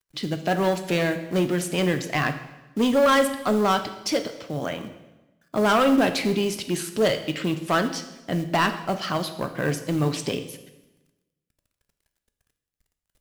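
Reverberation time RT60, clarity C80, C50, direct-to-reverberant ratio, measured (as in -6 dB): 1.0 s, 13.0 dB, 11.0 dB, 8.0 dB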